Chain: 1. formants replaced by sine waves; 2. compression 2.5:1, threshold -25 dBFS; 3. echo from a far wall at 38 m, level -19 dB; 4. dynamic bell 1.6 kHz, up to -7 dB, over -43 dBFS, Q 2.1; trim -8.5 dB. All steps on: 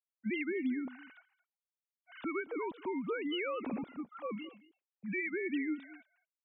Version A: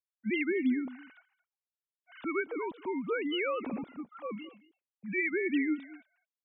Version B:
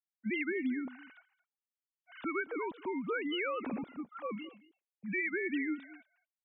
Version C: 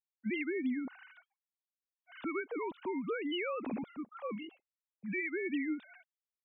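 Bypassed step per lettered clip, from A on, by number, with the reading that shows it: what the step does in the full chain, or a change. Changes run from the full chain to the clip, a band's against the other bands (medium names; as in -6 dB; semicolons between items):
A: 2, crest factor change +1.5 dB; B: 4, loudness change +1.0 LU; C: 3, momentary loudness spread change -5 LU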